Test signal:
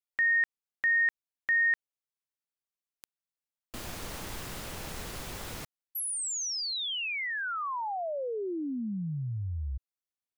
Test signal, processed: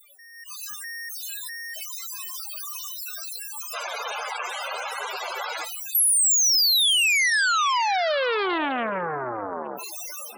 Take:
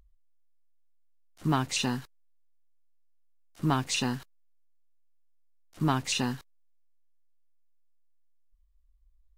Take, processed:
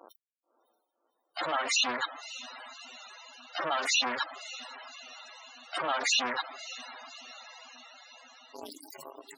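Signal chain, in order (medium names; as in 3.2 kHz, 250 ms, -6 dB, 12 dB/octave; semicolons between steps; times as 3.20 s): one-bit comparator; spectral noise reduction 17 dB; high-pass 610 Hz 12 dB/octave; level rider gain up to 16 dB; peak limiter -16 dBFS; echo that smears into a reverb 584 ms, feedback 65%, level -13.5 dB; loudest bins only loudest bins 32; loudspeaker Doppler distortion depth 0.18 ms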